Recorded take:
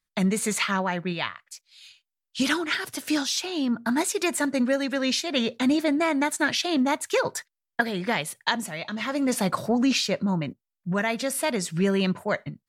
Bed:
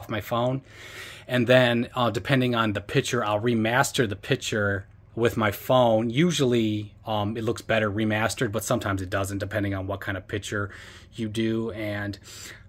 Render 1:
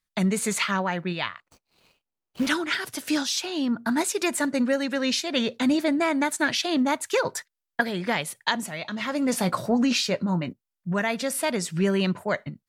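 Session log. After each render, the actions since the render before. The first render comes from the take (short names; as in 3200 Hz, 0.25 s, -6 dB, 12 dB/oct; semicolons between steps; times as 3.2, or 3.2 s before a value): 1.4–2.47 median filter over 25 samples; 9.32–10.49 doubler 17 ms -12 dB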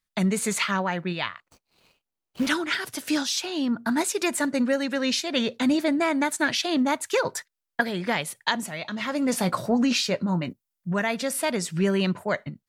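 10.41–10.91 high shelf 6300 Hz +7.5 dB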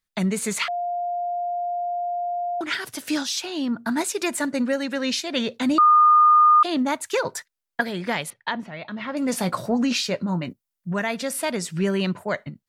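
0.68–2.61 bleep 703 Hz -23.5 dBFS; 5.78–6.63 bleep 1220 Hz -11 dBFS; 8.3–9.17 air absorption 280 m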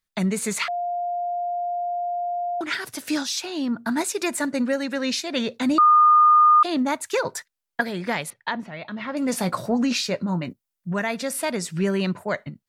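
dynamic EQ 3100 Hz, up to -5 dB, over -48 dBFS, Q 6.6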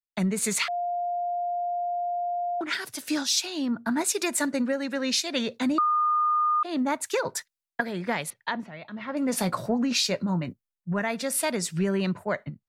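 compressor 10:1, threshold -22 dBFS, peak gain reduction 9 dB; three-band expander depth 70%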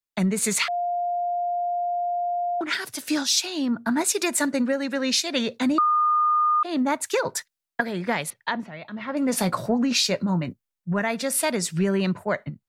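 gain +3 dB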